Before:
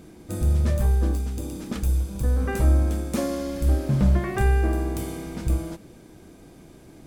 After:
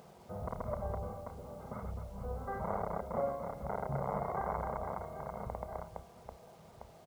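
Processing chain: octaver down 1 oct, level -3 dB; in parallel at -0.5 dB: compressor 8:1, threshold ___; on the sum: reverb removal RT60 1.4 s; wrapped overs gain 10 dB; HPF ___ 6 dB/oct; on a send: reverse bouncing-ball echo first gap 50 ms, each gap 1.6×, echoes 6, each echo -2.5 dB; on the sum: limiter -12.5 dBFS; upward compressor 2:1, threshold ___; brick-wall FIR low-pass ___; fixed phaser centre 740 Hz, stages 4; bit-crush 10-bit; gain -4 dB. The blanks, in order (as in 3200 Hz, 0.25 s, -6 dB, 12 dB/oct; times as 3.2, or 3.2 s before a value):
-31 dBFS, 560 Hz, -43 dBFS, 2200 Hz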